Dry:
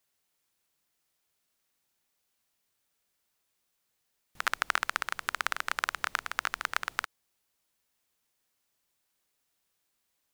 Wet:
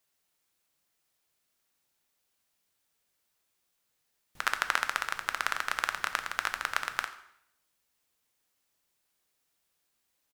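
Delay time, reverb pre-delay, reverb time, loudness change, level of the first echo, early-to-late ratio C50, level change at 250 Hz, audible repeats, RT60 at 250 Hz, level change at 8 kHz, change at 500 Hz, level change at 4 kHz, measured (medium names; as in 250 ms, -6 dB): 87 ms, 4 ms, 0.75 s, +0.5 dB, -18.5 dB, 12.0 dB, +0.5 dB, 1, 0.75 s, +0.5 dB, +1.0 dB, +0.5 dB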